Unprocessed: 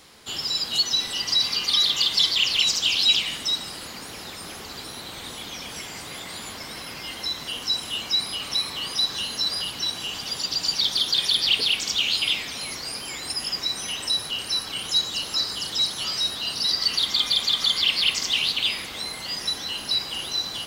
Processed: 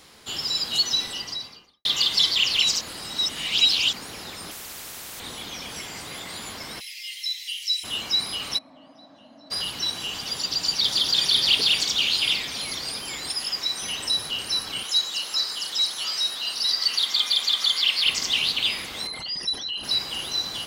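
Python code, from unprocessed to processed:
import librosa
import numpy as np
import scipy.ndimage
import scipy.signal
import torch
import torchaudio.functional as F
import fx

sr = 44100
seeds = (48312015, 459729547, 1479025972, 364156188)

y = fx.studio_fade_out(x, sr, start_s=0.9, length_s=0.95)
y = fx.spectral_comp(y, sr, ratio=10.0, at=(4.51, 5.2))
y = fx.steep_highpass(y, sr, hz=2000.0, slope=72, at=(6.79, 7.83), fade=0.02)
y = fx.double_bandpass(y, sr, hz=410.0, octaves=1.2, at=(8.57, 9.5), fade=0.02)
y = fx.echo_throw(y, sr, start_s=10.3, length_s=1.01, ms=530, feedback_pct=55, wet_db=-3.5)
y = fx.low_shelf(y, sr, hz=330.0, db=-8.0, at=(13.29, 13.82))
y = fx.highpass(y, sr, hz=750.0, slope=6, at=(14.83, 18.06))
y = fx.envelope_sharpen(y, sr, power=2.0, at=(19.07, 19.84))
y = fx.edit(y, sr, fx.reverse_span(start_s=2.81, length_s=1.12), tone=tone)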